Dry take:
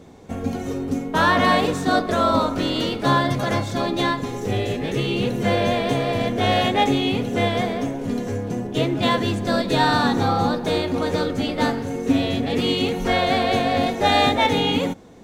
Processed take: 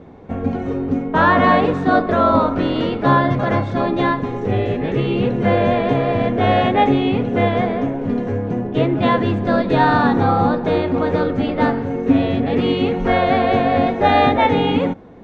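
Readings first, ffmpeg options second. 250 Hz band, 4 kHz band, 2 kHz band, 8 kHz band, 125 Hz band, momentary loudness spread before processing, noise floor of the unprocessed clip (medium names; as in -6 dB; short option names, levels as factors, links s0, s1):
+4.5 dB, -5.5 dB, +2.0 dB, under -15 dB, +4.5 dB, 8 LU, -30 dBFS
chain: -af "lowpass=2000,volume=1.68"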